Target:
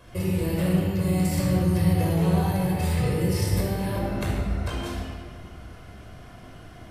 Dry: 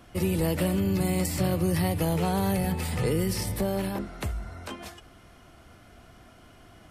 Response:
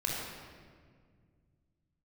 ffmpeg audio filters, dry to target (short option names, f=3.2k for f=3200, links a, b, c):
-filter_complex "[0:a]acompressor=threshold=-29dB:ratio=6[a];[1:a]atrim=start_sample=2205[b];[a][b]afir=irnorm=-1:irlink=0"